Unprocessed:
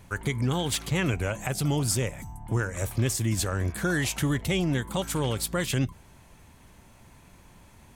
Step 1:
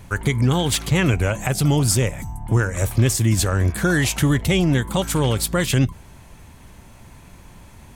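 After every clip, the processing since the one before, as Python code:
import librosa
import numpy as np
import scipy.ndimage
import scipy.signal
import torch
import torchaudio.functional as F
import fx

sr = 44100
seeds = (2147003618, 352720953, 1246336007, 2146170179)

y = fx.low_shelf(x, sr, hz=130.0, db=4.0)
y = y * 10.0 ** (7.0 / 20.0)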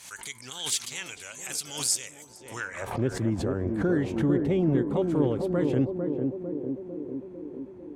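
y = fx.filter_sweep_bandpass(x, sr, from_hz=6600.0, to_hz=360.0, start_s=2.46, end_s=3.07, q=1.1)
y = fx.echo_banded(y, sr, ms=450, feedback_pct=71, hz=320.0, wet_db=-3)
y = fx.pre_swell(y, sr, db_per_s=85.0)
y = y * 10.0 ** (-3.0 / 20.0)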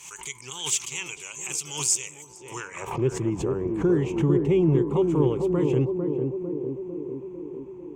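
y = fx.ripple_eq(x, sr, per_octave=0.72, db=12)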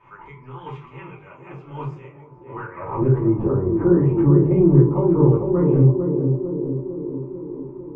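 y = scipy.signal.sosfilt(scipy.signal.butter(4, 1500.0, 'lowpass', fs=sr, output='sos'), x)
y = fx.room_shoebox(y, sr, seeds[0], volume_m3=160.0, walls='furnished', distance_m=2.7)
y = y * 10.0 ** (-1.0 / 20.0)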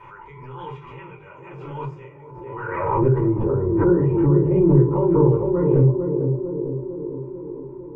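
y = x + 0.46 * np.pad(x, (int(2.1 * sr / 1000.0), 0))[:len(x)]
y = fx.pre_swell(y, sr, db_per_s=33.0)
y = y * 10.0 ** (-2.5 / 20.0)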